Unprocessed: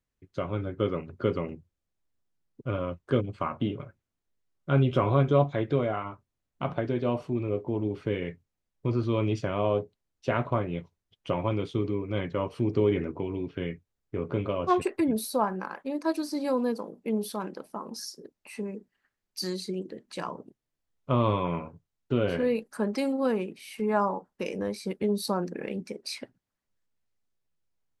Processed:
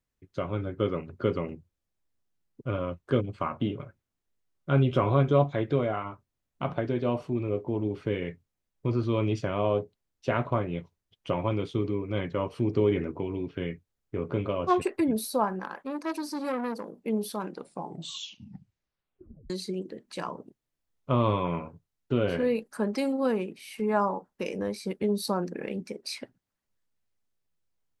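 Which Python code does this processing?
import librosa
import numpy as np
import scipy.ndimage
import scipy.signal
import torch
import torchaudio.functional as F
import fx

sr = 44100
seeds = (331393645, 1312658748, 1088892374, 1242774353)

y = fx.transformer_sat(x, sr, knee_hz=1300.0, at=(15.59, 16.95))
y = fx.edit(y, sr, fx.tape_stop(start_s=17.45, length_s=2.05), tone=tone)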